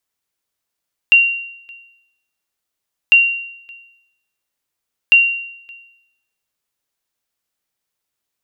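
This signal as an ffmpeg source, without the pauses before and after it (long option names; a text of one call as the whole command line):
ffmpeg -f lavfi -i "aevalsrc='0.708*(sin(2*PI*2760*mod(t,2))*exp(-6.91*mod(t,2)/0.78)+0.0355*sin(2*PI*2760*max(mod(t,2)-0.57,0))*exp(-6.91*max(mod(t,2)-0.57,0)/0.78))':duration=6:sample_rate=44100" out.wav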